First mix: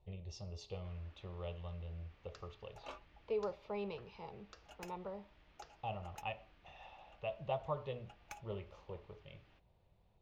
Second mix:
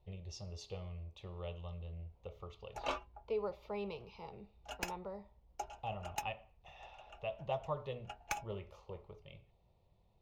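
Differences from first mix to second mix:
speech: remove distance through air 61 m; first sound: muted; second sound +12.0 dB

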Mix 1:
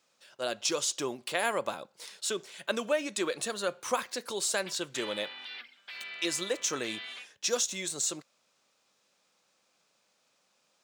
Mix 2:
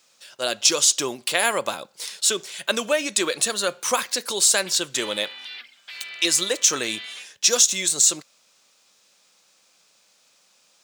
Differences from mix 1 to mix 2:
speech +5.5 dB; master: add treble shelf 2.4 kHz +9.5 dB

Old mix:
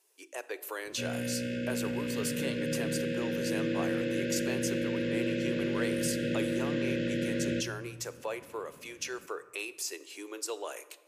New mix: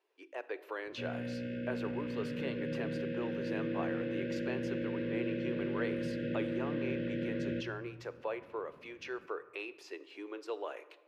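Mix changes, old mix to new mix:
background -4.0 dB; master: add distance through air 350 m

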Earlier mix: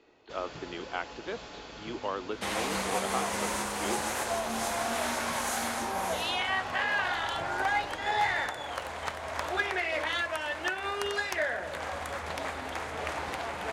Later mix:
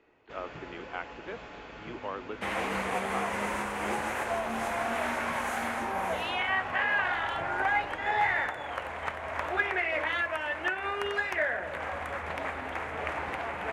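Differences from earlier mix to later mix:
speech -4.0 dB; master: add resonant high shelf 3.2 kHz -9.5 dB, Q 1.5

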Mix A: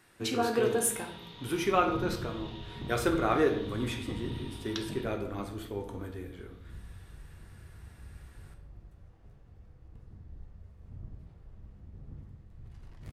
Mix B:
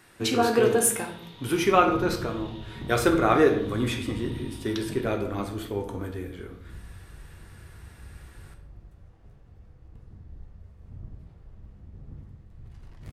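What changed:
speech +6.5 dB; second sound +3.0 dB

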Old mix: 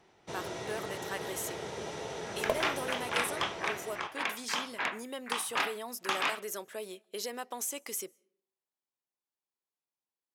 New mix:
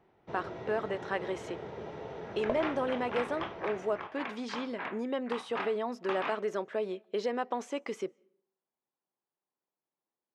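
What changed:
speech +10.0 dB; master: add tape spacing loss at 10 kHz 37 dB

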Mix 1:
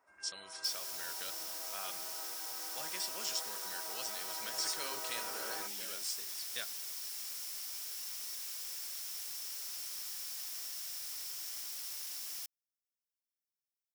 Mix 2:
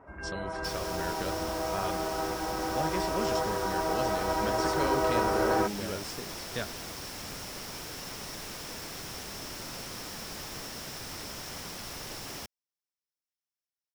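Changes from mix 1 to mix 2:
speech -6.5 dB; master: remove differentiator

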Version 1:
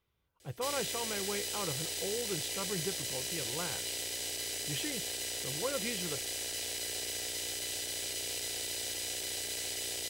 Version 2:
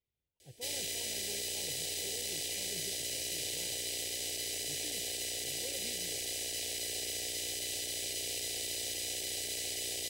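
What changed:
speech -12.0 dB; master: add Butterworth band-stop 1.2 kHz, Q 1.1

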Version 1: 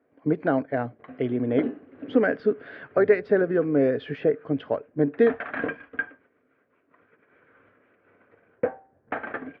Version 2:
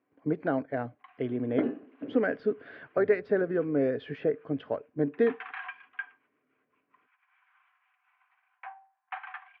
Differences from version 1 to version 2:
speech -5.5 dB; first sound: add rippled Chebyshev high-pass 730 Hz, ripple 9 dB

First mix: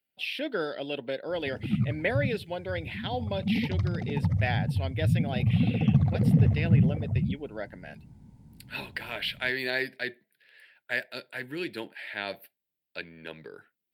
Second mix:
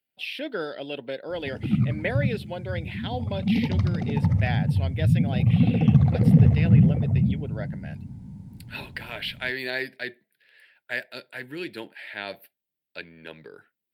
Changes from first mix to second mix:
background +3.5 dB; reverb: on

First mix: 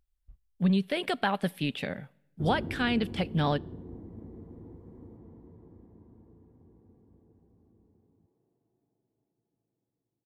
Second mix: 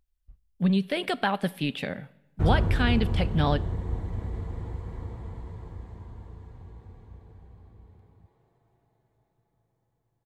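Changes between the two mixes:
speech: send +8.5 dB; background: remove band-pass filter 280 Hz, Q 2.2

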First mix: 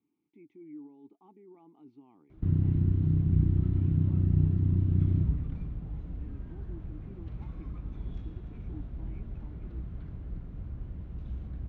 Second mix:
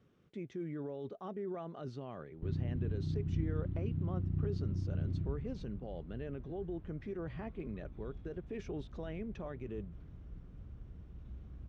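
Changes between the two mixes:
speech: remove vowel filter u; background -10.5 dB

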